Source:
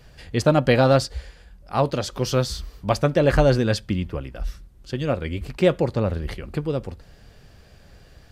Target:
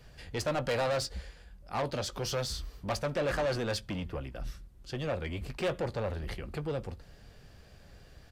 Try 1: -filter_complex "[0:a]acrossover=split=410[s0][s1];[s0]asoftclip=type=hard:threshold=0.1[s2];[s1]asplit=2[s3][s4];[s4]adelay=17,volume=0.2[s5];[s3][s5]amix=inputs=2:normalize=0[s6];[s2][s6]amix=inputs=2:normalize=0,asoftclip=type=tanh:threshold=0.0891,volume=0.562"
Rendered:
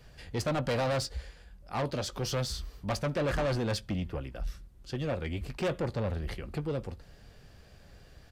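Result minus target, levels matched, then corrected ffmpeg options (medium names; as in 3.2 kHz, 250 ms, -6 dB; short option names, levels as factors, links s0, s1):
hard clipper: distortion -7 dB
-filter_complex "[0:a]acrossover=split=410[s0][s1];[s0]asoftclip=type=hard:threshold=0.0355[s2];[s1]asplit=2[s3][s4];[s4]adelay=17,volume=0.2[s5];[s3][s5]amix=inputs=2:normalize=0[s6];[s2][s6]amix=inputs=2:normalize=0,asoftclip=type=tanh:threshold=0.0891,volume=0.562"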